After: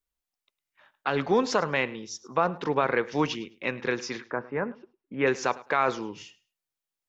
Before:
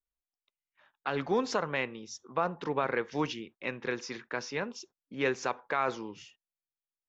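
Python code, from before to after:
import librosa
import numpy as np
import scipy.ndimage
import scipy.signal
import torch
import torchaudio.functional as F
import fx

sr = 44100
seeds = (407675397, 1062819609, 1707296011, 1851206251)

p1 = fx.lowpass(x, sr, hz=fx.line((4.24, 1400.0), (5.26, 2600.0)), slope=24, at=(4.24, 5.26), fade=0.02)
p2 = p1 + fx.echo_feedback(p1, sr, ms=105, feedback_pct=19, wet_db=-20, dry=0)
y = p2 * 10.0 ** (5.5 / 20.0)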